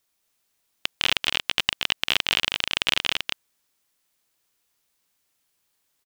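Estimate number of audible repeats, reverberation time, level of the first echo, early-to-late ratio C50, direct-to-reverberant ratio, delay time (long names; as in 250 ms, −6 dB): 1, no reverb audible, −4.0 dB, no reverb audible, no reverb audible, 231 ms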